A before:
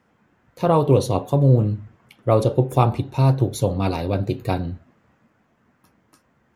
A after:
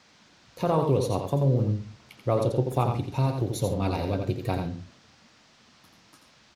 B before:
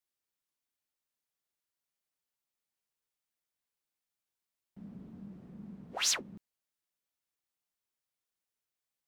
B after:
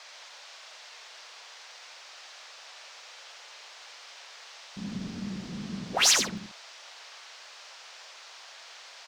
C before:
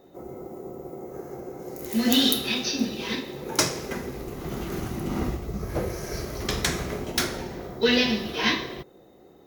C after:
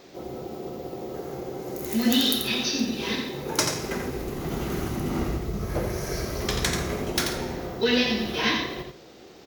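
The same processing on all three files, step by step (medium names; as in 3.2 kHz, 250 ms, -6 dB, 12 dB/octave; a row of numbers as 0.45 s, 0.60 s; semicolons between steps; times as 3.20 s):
compression 1.5:1, threshold -31 dBFS; band noise 540–5800 Hz -60 dBFS; on a send: multi-tap echo 86/139 ms -6/-18 dB; on the sum: normalise loudness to -27 LUFS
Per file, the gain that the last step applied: -1.0 dB, +10.5 dB, +3.0 dB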